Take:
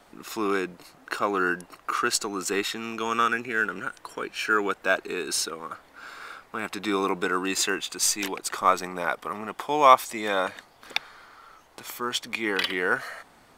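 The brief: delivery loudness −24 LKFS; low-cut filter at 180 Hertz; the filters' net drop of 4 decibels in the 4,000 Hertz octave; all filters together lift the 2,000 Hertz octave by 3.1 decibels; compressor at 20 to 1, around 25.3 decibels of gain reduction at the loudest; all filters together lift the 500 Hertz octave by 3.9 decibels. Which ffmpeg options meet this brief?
ffmpeg -i in.wav -af "highpass=180,equalizer=frequency=500:width_type=o:gain=5,equalizer=frequency=2000:width_type=o:gain=5.5,equalizer=frequency=4000:width_type=o:gain=-7,acompressor=threshold=-33dB:ratio=20,volume=14.5dB" out.wav

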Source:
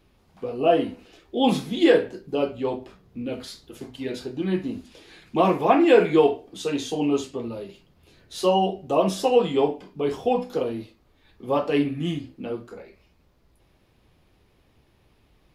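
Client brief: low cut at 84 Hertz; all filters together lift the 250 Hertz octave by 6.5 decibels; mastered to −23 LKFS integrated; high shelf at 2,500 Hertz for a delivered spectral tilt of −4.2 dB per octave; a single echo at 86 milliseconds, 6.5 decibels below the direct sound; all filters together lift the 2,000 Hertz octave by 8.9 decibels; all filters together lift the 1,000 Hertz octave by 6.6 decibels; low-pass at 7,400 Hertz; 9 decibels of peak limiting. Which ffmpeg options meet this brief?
ffmpeg -i in.wav -af "highpass=84,lowpass=7400,equalizer=frequency=250:width_type=o:gain=8,equalizer=frequency=1000:width_type=o:gain=6.5,equalizer=frequency=2000:width_type=o:gain=7.5,highshelf=frequency=2500:gain=4.5,alimiter=limit=-7dB:level=0:latency=1,aecho=1:1:86:0.473,volume=-3.5dB" out.wav

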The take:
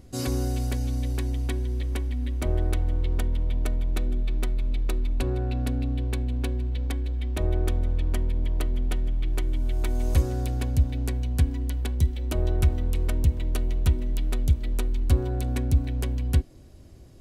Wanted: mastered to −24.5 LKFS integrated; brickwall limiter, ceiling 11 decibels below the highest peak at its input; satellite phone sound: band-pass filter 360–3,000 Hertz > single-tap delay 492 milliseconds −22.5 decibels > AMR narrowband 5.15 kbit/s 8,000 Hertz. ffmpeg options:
ffmpeg -i in.wav -af "alimiter=limit=-21.5dB:level=0:latency=1,highpass=360,lowpass=3000,aecho=1:1:492:0.075,volume=20.5dB" -ar 8000 -c:a libopencore_amrnb -b:a 5150 out.amr

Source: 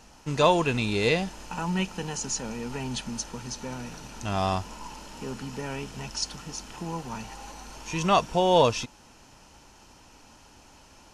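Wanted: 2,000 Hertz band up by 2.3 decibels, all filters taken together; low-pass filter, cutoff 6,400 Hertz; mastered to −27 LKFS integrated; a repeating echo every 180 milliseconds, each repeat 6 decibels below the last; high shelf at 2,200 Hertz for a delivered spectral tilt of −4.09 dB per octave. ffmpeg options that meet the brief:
ffmpeg -i in.wav -af "lowpass=6400,equalizer=frequency=2000:width_type=o:gain=7,highshelf=frequency=2200:gain=-5.5,aecho=1:1:180|360|540|720|900|1080:0.501|0.251|0.125|0.0626|0.0313|0.0157" out.wav

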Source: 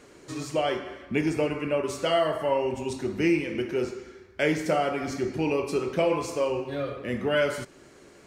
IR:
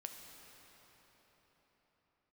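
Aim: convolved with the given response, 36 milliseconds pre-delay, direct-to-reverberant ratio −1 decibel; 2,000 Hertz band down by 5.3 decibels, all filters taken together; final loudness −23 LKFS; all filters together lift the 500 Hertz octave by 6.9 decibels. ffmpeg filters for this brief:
-filter_complex "[0:a]equalizer=frequency=500:width_type=o:gain=9,equalizer=frequency=2000:width_type=o:gain=-7.5,asplit=2[link_01][link_02];[1:a]atrim=start_sample=2205,adelay=36[link_03];[link_02][link_03]afir=irnorm=-1:irlink=0,volume=4.5dB[link_04];[link_01][link_04]amix=inputs=2:normalize=0,volume=-4dB"

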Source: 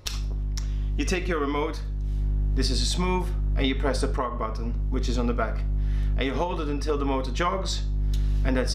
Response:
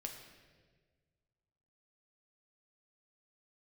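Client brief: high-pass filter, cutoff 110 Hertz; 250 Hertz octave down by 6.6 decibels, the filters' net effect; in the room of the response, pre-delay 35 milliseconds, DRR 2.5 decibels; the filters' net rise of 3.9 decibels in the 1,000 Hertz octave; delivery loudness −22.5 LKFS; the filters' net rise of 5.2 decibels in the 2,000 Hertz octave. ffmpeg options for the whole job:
-filter_complex "[0:a]highpass=110,equalizer=frequency=250:width_type=o:gain=-8.5,equalizer=frequency=1000:width_type=o:gain=3.5,equalizer=frequency=2000:width_type=o:gain=5.5,asplit=2[link_01][link_02];[1:a]atrim=start_sample=2205,adelay=35[link_03];[link_02][link_03]afir=irnorm=-1:irlink=0,volume=0dB[link_04];[link_01][link_04]amix=inputs=2:normalize=0,volume=4.5dB"

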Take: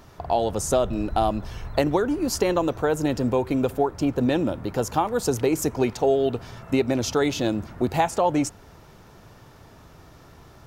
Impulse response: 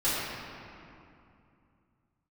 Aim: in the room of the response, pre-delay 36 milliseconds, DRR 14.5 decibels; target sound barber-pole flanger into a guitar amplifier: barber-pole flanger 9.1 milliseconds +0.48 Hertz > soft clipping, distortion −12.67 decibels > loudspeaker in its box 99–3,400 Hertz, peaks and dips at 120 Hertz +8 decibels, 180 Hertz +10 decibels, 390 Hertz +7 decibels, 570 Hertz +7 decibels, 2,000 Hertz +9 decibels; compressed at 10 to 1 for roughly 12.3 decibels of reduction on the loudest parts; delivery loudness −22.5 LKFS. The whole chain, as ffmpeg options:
-filter_complex "[0:a]acompressor=threshold=-29dB:ratio=10,asplit=2[link_01][link_02];[1:a]atrim=start_sample=2205,adelay=36[link_03];[link_02][link_03]afir=irnorm=-1:irlink=0,volume=-26.5dB[link_04];[link_01][link_04]amix=inputs=2:normalize=0,asplit=2[link_05][link_06];[link_06]adelay=9.1,afreqshift=0.48[link_07];[link_05][link_07]amix=inputs=2:normalize=1,asoftclip=threshold=-32.5dB,highpass=99,equalizer=frequency=120:width_type=q:width=4:gain=8,equalizer=frequency=180:width_type=q:width=4:gain=10,equalizer=frequency=390:width_type=q:width=4:gain=7,equalizer=frequency=570:width_type=q:width=4:gain=7,equalizer=frequency=2000:width_type=q:width=4:gain=9,lowpass=frequency=3400:width=0.5412,lowpass=frequency=3400:width=1.3066,volume=13dB"

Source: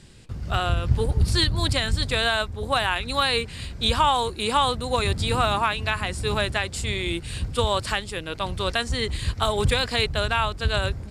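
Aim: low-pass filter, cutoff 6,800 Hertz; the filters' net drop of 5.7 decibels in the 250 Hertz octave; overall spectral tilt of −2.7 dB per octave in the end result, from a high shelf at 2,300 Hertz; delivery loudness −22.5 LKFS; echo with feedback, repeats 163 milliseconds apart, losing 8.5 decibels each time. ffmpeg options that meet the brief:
ffmpeg -i in.wav -af "lowpass=6800,equalizer=frequency=250:width_type=o:gain=-8.5,highshelf=frequency=2300:gain=9,aecho=1:1:163|326|489|652:0.376|0.143|0.0543|0.0206,volume=-2dB" out.wav

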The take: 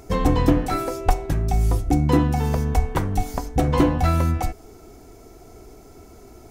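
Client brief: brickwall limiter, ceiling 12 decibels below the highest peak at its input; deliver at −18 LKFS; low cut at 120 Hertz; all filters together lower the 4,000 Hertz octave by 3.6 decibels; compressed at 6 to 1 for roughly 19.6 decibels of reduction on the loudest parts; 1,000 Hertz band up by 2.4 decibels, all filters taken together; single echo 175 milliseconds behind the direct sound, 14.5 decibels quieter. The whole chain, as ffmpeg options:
ffmpeg -i in.wav -af "highpass=120,equalizer=frequency=1000:width_type=o:gain=3.5,equalizer=frequency=4000:width_type=o:gain=-5,acompressor=threshold=-36dB:ratio=6,alimiter=level_in=7.5dB:limit=-24dB:level=0:latency=1,volume=-7.5dB,aecho=1:1:175:0.188,volume=24dB" out.wav

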